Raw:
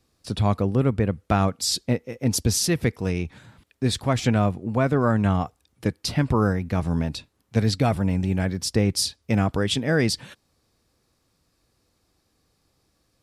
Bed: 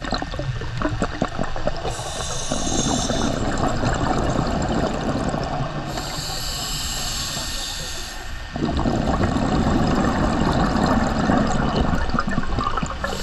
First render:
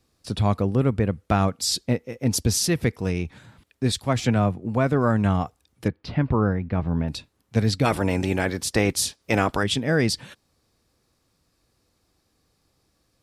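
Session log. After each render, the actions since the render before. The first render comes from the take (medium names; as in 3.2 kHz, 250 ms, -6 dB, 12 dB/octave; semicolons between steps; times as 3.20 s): 3.92–4.65 s: three bands expanded up and down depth 40%; 5.88–7.08 s: distance through air 330 m; 7.84–9.62 s: spectral peaks clipped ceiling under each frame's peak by 15 dB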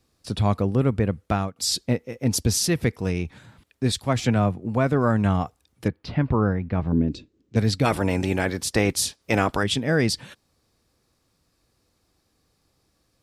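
1.13–1.56 s: fade out equal-power, to -19.5 dB; 6.92–7.56 s: FFT filter 150 Hz 0 dB, 340 Hz +12 dB, 820 Hz -14 dB, 2.7 kHz -7 dB, 7.2 kHz -8 dB, 11 kHz -29 dB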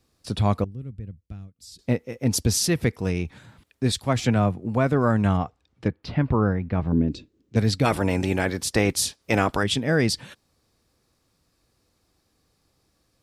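0.64–1.79 s: amplifier tone stack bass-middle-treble 10-0-1; 5.37–6.03 s: distance through air 120 m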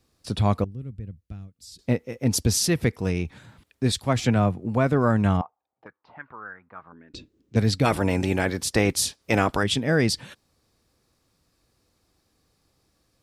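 5.41–7.14 s: auto-wah 720–1700 Hz, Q 4.5, up, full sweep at -16.5 dBFS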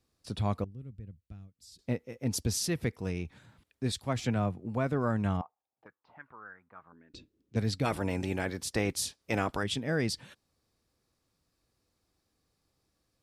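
trim -9 dB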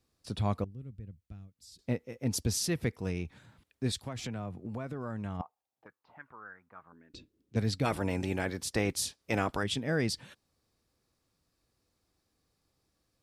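4.07–5.40 s: compression, threshold -34 dBFS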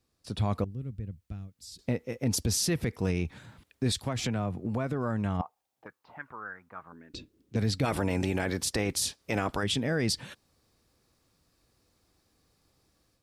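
level rider gain up to 7.5 dB; peak limiter -19 dBFS, peak gain reduction 9 dB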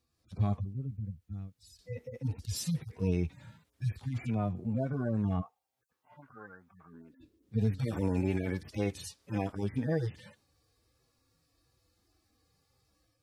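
harmonic-percussive separation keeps harmonic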